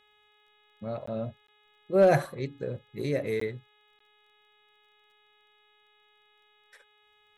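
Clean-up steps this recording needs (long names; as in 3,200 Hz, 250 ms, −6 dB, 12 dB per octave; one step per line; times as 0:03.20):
clipped peaks rebuilt −13 dBFS
click removal
hum removal 419.8 Hz, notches 9
repair the gap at 0:01.06/0:01.47/0:03.40/0:03.99, 14 ms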